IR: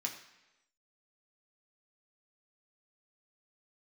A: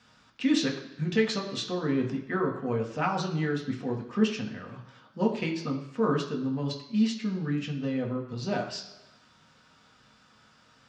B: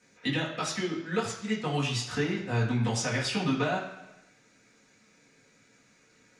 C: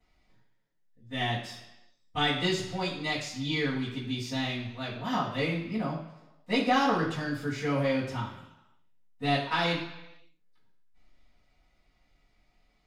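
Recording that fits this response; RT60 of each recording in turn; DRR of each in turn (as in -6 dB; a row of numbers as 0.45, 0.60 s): A; 1.0, 1.0, 1.0 s; 0.0, -6.5, -15.0 dB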